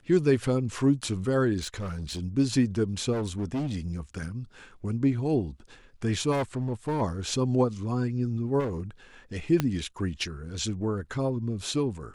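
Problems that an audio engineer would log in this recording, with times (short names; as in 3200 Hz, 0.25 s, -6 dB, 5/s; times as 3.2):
1.61–2.2 clipped -29.5 dBFS
3.12–3.99 clipped -26 dBFS
6.31–7.02 clipped -24 dBFS
8.59–8.81 clipped -26.5 dBFS
9.6 pop -11 dBFS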